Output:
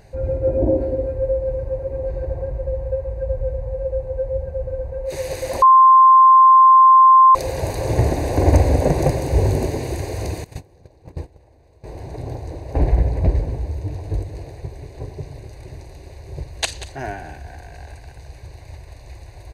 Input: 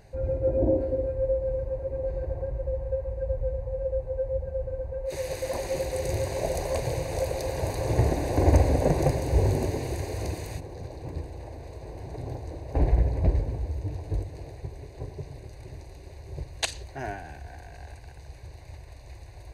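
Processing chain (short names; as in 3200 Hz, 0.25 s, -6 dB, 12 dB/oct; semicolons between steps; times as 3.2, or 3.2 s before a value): echo 0.187 s -14.5 dB; 5.62–7.35 bleep 1050 Hz -11.5 dBFS; 10.44–11.84 gate -33 dBFS, range -18 dB; gain +5.5 dB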